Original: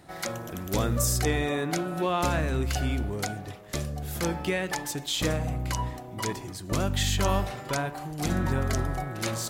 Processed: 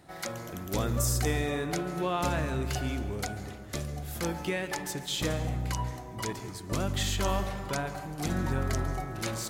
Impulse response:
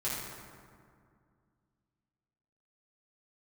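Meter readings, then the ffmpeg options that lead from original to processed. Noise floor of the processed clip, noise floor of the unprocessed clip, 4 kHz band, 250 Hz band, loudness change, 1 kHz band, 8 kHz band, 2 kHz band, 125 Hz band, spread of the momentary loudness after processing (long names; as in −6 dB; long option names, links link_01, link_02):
−43 dBFS, −41 dBFS, −3.5 dB, −3.0 dB, −3.0 dB, −3.0 dB, −3.5 dB, −3.0 dB, −3.0 dB, 9 LU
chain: -filter_complex "[0:a]asplit=2[link_01][link_02];[1:a]atrim=start_sample=2205,adelay=137[link_03];[link_02][link_03]afir=irnorm=-1:irlink=0,volume=-17dB[link_04];[link_01][link_04]amix=inputs=2:normalize=0,volume=-3.5dB"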